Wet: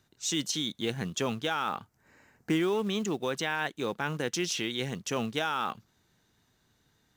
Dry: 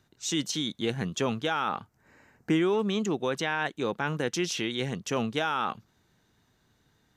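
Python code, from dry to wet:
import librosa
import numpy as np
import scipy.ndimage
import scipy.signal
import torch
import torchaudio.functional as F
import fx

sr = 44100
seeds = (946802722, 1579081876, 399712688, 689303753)

p1 = fx.high_shelf(x, sr, hz=2900.0, db=4.5)
p2 = fx.quant_float(p1, sr, bits=2)
p3 = p1 + (p2 * 10.0 ** (-4.0 / 20.0))
y = p3 * 10.0 ** (-7.0 / 20.0)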